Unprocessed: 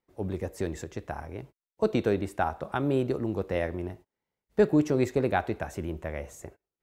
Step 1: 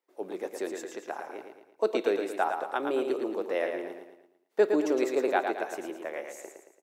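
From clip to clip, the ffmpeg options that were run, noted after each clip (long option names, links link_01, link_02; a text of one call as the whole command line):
ffmpeg -i in.wav -filter_complex "[0:a]highpass=frequency=330:width=0.5412,highpass=frequency=330:width=1.3066,asplit=2[link_01][link_02];[link_02]aecho=0:1:112|224|336|448|560:0.501|0.226|0.101|0.0457|0.0206[link_03];[link_01][link_03]amix=inputs=2:normalize=0" out.wav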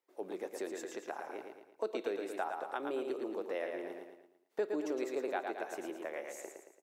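ffmpeg -i in.wav -af "acompressor=threshold=-37dB:ratio=2,volume=-2dB" out.wav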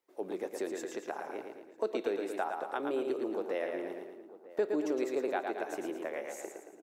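ffmpeg -i in.wav -filter_complex "[0:a]lowshelf=frequency=310:gain=5,asplit=2[link_01][link_02];[link_02]adelay=948,lowpass=frequency=1200:poles=1,volume=-17dB,asplit=2[link_03][link_04];[link_04]adelay=948,lowpass=frequency=1200:poles=1,volume=0.26[link_05];[link_01][link_03][link_05]amix=inputs=3:normalize=0,volume=2dB" out.wav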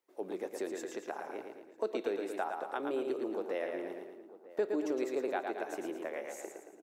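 ffmpeg -i in.wav -af "bandreject=frequency=50:width_type=h:width=6,bandreject=frequency=100:width_type=h:width=6,bandreject=frequency=150:width_type=h:width=6,volume=-1.5dB" out.wav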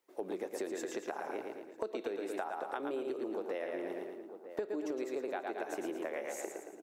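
ffmpeg -i in.wav -af "acompressor=threshold=-39dB:ratio=6,volume=4.5dB" out.wav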